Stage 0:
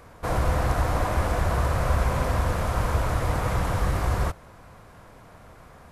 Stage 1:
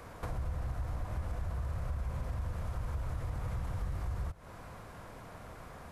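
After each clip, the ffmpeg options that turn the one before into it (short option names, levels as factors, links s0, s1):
-filter_complex "[0:a]acrossover=split=160[s0][s1];[s1]acompressor=threshold=0.0141:ratio=6[s2];[s0][s2]amix=inputs=2:normalize=0,asplit=2[s3][s4];[s4]alimiter=limit=0.0841:level=0:latency=1:release=19,volume=1.33[s5];[s3][s5]amix=inputs=2:normalize=0,acompressor=threshold=0.0316:ratio=2.5,volume=0.422"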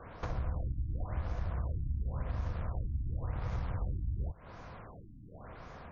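-filter_complex "[0:a]asplit=2[s0][s1];[s1]acrusher=bits=4:mix=0:aa=0.5,volume=0.282[s2];[s0][s2]amix=inputs=2:normalize=0,afftfilt=real='re*lt(b*sr/1024,300*pow(7000/300,0.5+0.5*sin(2*PI*0.92*pts/sr)))':imag='im*lt(b*sr/1024,300*pow(7000/300,0.5+0.5*sin(2*PI*0.92*pts/sr)))':win_size=1024:overlap=0.75"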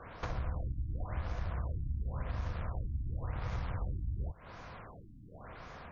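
-af "equalizer=f=3200:t=o:w=3:g=5.5,volume=0.841"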